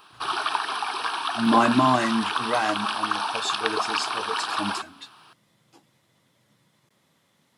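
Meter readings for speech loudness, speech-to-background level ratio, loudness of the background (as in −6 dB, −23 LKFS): −25.5 LKFS, 1.5 dB, −27.0 LKFS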